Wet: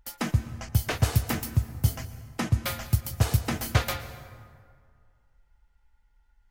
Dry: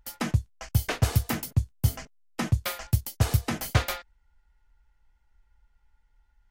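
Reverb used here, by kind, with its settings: plate-style reverb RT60 2.1 s, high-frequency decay 0.55×, pre-delay 105 ms, DRR 12 dB

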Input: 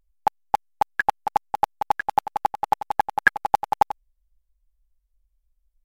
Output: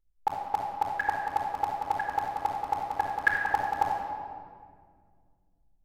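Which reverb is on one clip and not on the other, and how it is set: simulated room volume 3600 m³, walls mixed, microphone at 4.1 m; trim -11.5 dB

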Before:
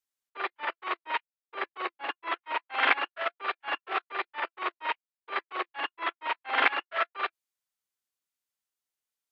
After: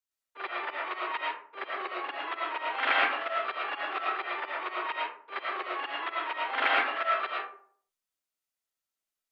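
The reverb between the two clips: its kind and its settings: algorithmic reverb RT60 0.53 s, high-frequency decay 0.5×, pre-delay 70 ms, DRR -4 dB; trim -5 dB

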